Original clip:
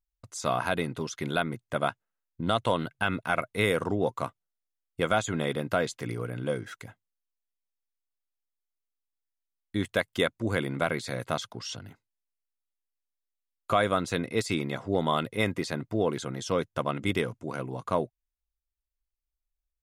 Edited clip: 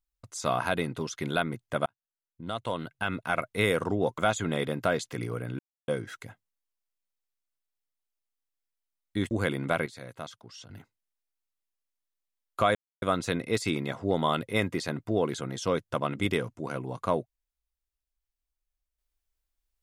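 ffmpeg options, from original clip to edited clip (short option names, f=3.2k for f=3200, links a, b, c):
-filter_complex "[0:a]asplit=8[a][b][c][d][e][f][g][h];[a]atrim=end=1.86,asetpts=PTS-STARTPTS,afade=t=out:st=1.856:d=0.004:c=hsin[i];[b]atrim=start=1.86:end=4.182,asetpts=PTS-STARTPTS,afade=t=in:d=1.68[j];[c]atrim=start=5.058:end=6.47,asetpts=PTS-STARTPTS,afade=t=out:st=1.408:d=0.004:c=hsin,apad=pad_dur=0.29[k];[d]atrim=start=6.47:end=9.902,asetpts=PTS-STARTPTS,afade=t=in:d=0.004:c=hsin[l];[e]atrim=start=10.418:end=10.972[m];[f]atrim=start=10.968:end=11.812,asetpts=PTS-STARTPTS,volume=-10dB[n];[g]atrim=start=11.808:end=13.86,asetpts=PTS-STARTPTS,afade=t=out:st=2.048:d=0.004:c=hsin,apad=pad_dur=0.27[o];[h]atrim=start=13.86,asetpts=PTS-STARTPTS,afade=t=in:d=0.004:c=hsin[p];[i][j]concat=n=2:v=0:a=1[q];[k][l]concat=n=2:v=0:a=1[r];[q][r]acrossfade=d=0.004:c1=hsin:c2=hsin[s];[s][m]acrossfade=d=0.004:c1=hsin:c2=hsin[t];[t][n]acrossfade=d=0.004:c1=hsin:c2=hsin[u];[o][p]concat=n=2:v=0:a=1[v];[u][v]acrossfade=d=0.004:c1=hsin:c2=hsin"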